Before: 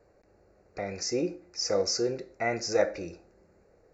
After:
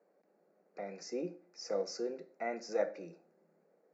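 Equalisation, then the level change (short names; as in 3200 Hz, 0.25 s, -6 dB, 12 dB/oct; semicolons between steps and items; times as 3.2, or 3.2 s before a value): rippled Chebyshev high-pass 160 Hz, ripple 3 dB; high shelf 3300 Hz -8 dB; -7.0 dB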